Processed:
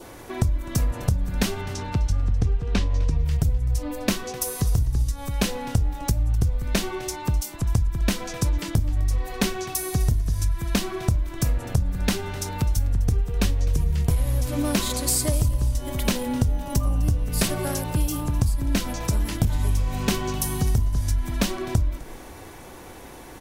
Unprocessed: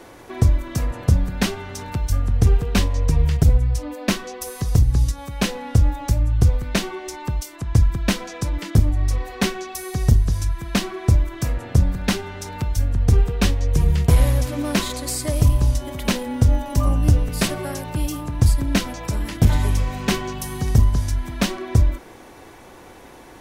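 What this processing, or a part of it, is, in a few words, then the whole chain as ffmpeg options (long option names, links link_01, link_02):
ASMR close-microphone chain: -filter_complex "[0:a]asettb=1/sr,asplit=3[link_01][link_02][link_03];[link_01]atrim=end=1.614[link_04];[link_02]atrim=start=1.61:end=3.18,asetpts=PTS-STARTPTS,afade=type=in:duration=0.004:curve=qsin,afade=type=out:start_time=1.566:duration=0.004:curve=qsin,lowpass=5300[link_05];[link_03]atrim=start=3.176[link_06];[link_04][link_05]acrossfade=duration=0.004:curve1=hsin:curve2=qsin[link_07];[link_07][link_06]acrossfade=duration=0.004:curve1=qsin:curve2=hsin,lowshelf=frequency=130:gain=5.5,acompressor=threshold=-18dB:ratio=10,highshelf=frequency=7300:gain=8,asplit=4[link_08][link_09][link_10][link_11];[link_09]adelay=255,afreqshift=-71,volume=-18dB[link_12];[link_10]adelay=510,afreqshift=-142,volume=-27.6dB[link_13];[link_11]adelay=765,afreqshift=-213,volume=-37.3dB[link_14];[link_08][link_12][link_13][link_14]amix=inputs=4:normalize=0,adynamicequalizer=threshold=0.00316:dfrequency=1900:dqfactor=2.8:tfrequency=1900:tqfactor=2.8:attack=5:release=100:ratio=0.375:range=1.5:mode=cutabove:tftype=bell"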